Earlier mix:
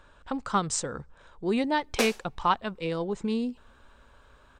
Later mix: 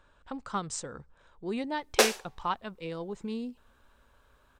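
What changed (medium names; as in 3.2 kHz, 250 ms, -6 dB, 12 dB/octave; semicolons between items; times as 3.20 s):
speech -7.0 dB; background +6.5 dB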